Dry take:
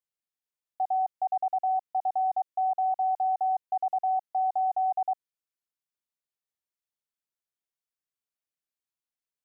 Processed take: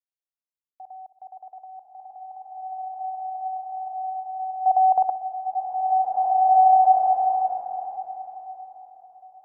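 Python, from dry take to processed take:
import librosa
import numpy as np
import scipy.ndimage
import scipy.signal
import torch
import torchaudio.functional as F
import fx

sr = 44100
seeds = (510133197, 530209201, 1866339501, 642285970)

p1 = fx.peak_eq(x, sr, hz=670.0, db=fx.line((4.66, 12.0), (5.09, 5.5)), octaves=1.3, at=(4.66, 5.09), fade=0.02)
p2 = fx.level_steps(p1, sr, step_db=22)
p3 = p2 + fx.echo_wet_lowpass(p2, sr, ms=63, feedback_pct=62, hz=740.0, wet_db=-12.0, dry=0)
p4 = fx.rev_bloom(p3, sr, seeds[0], attack_ms=2160, drr_db=-6.5)
y = F.gain(torch.from_numpy(p4), 4.0).numpy()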